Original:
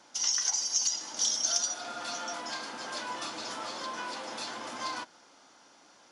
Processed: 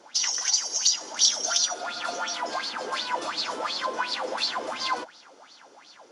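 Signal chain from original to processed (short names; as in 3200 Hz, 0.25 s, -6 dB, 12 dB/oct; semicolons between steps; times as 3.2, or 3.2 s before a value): LFO bell 2.8 Hz 400–4600 Hz +18 dB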